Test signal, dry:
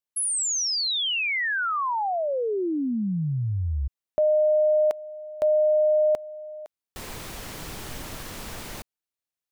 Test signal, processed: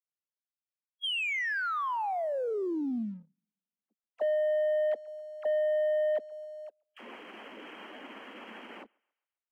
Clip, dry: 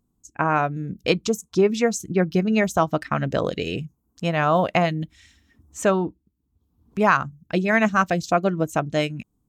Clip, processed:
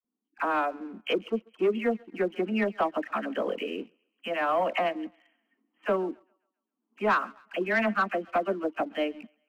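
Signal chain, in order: coarse spectral quantiser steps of 15 dB; brick-wall FIR band-pass 200–3300 Hz; phase dispersion lows, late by 46 ms, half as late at 930 Hz; on a send: thinning echo 135 ms, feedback 46%, high-pass 510 Hz, level -23 dB; on the sum: waveshaping leveller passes 1; trim -8.5 dB

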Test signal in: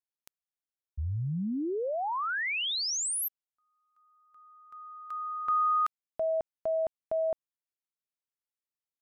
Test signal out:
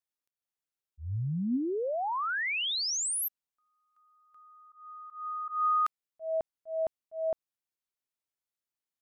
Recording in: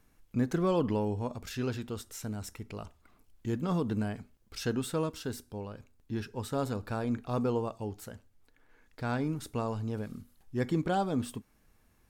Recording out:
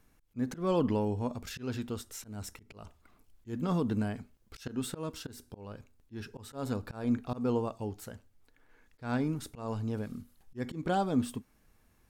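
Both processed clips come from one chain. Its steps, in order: slow attack 172 ms; dynamic bell 250 Hz, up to +5 dB, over -51 dBFS, Q 7.8

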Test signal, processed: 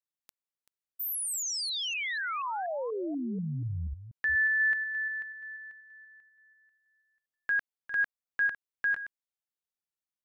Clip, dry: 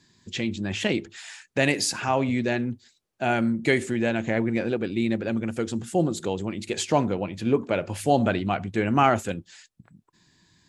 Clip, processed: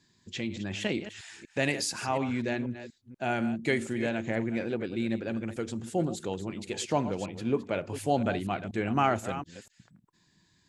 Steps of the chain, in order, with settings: chunks repeated in reverse 242 ms, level -12 dB; trim -6 dB

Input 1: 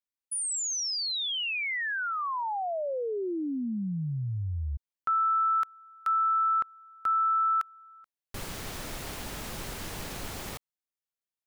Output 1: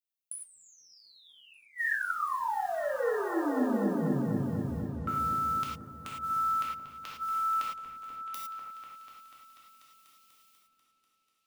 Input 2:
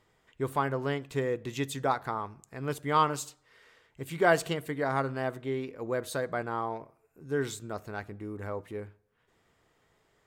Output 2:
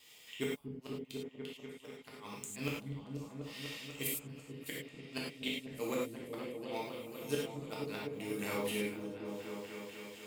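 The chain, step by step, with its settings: RIAA curve recording; gate with hold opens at -58 dBFS, hold 71 ms, range -21 dB; FFT filter 270 Hz 0 dB, 1.6 kHz -9 dB, 2.6 kHz +10 dB, 7 kHz +1 dB; in parallel at +1 dB: compression 20:1, threshold -32 dBFS; on the sum: inverted gate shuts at -19 dBFS, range -41 dB; modulation noise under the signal 26 dB; overload inside the chain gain 19 dB; on a send: delay with an opening low-pass 245 ms, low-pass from 200 Hz, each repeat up 1 oct, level 0 dB; on the sum: gated-style reverb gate 130 ms flat, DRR -4.5 dB; trim -6 dB

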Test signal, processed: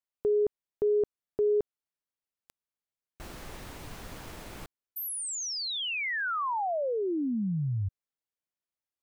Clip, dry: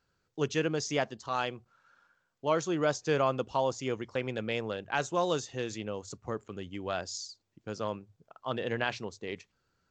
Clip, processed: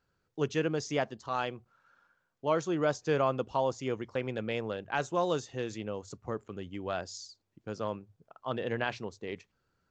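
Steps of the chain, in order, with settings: treble shelf 2.7 kHz -6 dB

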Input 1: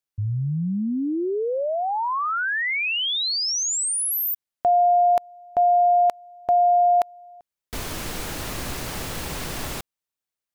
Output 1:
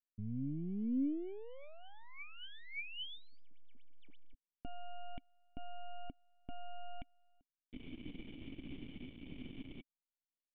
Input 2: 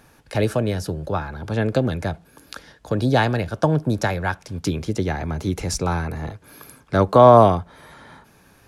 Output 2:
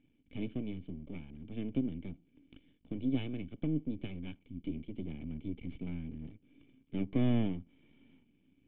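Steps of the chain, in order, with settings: half-wave rectifier; cascade formant filter i; trim -2 dB

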